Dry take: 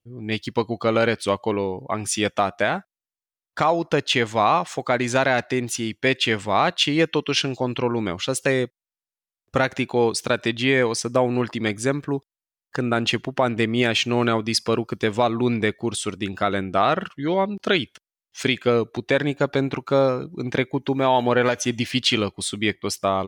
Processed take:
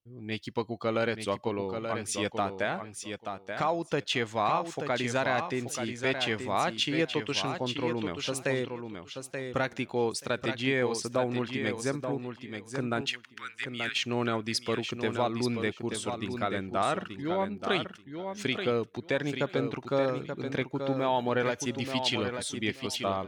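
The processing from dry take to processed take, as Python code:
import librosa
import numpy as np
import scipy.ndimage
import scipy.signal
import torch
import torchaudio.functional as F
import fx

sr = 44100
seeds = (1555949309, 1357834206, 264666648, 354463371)

y = fx.steep_highpass(x, sr, hz=1300.0, slope=48, at=(13.01, 13.96))
y = fx.echo_feedback(y, sr, ms=881, feedback_pct=17, wet_db=-7.0)
y = y * librosa.db_to_amplitude(-9.0)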